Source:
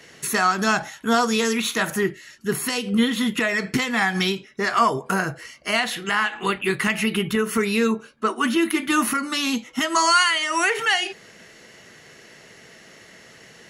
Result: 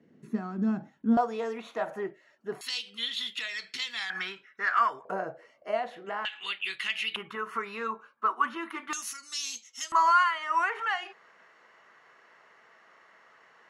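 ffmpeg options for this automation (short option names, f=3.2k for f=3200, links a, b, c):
-af "asetnsamples=n=441:p=0,asendcmd='1.17 bandpass f 670;2.61 bandpass f 3800;4.1 bandpass f 1500;5.05 bandpass f 600;6.25 bandpass f 3200;7.16 bandpass f 1100;8.93 bandpass f 6100;9.92 bandpass f 1100',bandpass=f=230:t=q:w=2.9:csg=0"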